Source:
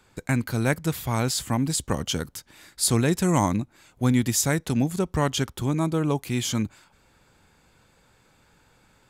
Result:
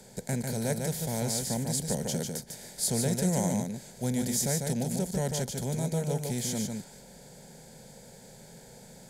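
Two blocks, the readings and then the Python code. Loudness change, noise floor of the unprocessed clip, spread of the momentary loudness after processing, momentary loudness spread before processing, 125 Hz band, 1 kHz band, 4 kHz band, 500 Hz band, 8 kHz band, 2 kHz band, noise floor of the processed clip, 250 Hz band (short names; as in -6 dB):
-5.5 dB, -61 dBFS, 22 LU, 7 LU, -5.5 dB, -10.0 dB, -6.5 dB, -4.0 dB, -2.5 dB, -11.0 dB, -51 dBFS, -6.5 dB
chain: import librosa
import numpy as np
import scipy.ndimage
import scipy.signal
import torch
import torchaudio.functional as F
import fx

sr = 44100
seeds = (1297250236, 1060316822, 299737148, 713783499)

y = fx.bin_compress(x, sr, power=0.6)
y = fx.peak_eq(y, sr, hz=2800.0, db=-10.5, octaves=0.71)
y = fx.fixed_phaser(y, sr, hz=310.0, stages=6)
y = y + 10.0 ** (-4.5 / 20.0) * np.pad(y, (int(148 * sr / 1000.0), 0))[:len(y)]
y = y * 10.0 ** (-7.0 / 20.0)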